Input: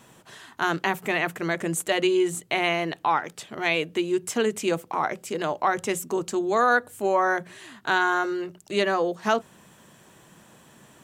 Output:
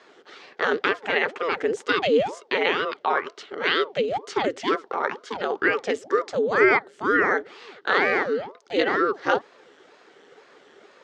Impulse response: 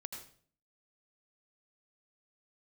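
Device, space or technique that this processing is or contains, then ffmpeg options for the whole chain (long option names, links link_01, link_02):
voice changer toy: -af "aeval=exprs='val(0)*sin(2*PI*470*n/s+470*0.85/2.1*sin(2*PI*2.1*n/s))':channel_layout=same,highpass=400,equalizer=frequency=410:width_type=q:width=4:gain=9,equalizer=frequency=660:width_type=q:width=4:gain=-6,equalizer=frequency=1000:width_type=q:width=4:gain=-8,equalizer=frequency=2500:width_type=q:width=4:gain=-6,equalizer=frequency=3800:width_type=q:width=4:gain=-3,lowpass=frequency=4700:width=0.5412,lowpass=frequency=4700:width=1.3066,volume=7dB"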